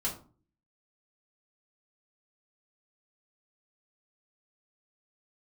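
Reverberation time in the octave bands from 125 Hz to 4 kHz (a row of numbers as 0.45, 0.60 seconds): 0.65, 0.60, 0.40, 0.40, 0.25, 0.25 seconds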